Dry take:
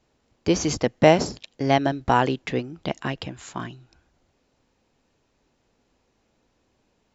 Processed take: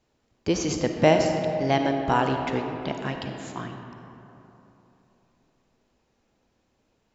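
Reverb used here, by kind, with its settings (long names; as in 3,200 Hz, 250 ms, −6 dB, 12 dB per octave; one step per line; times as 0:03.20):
comb and all-pass reverb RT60 3.3 s, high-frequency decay 0.45×, pre-delay 15 ms, DRR 4 dB
level −3.5 dB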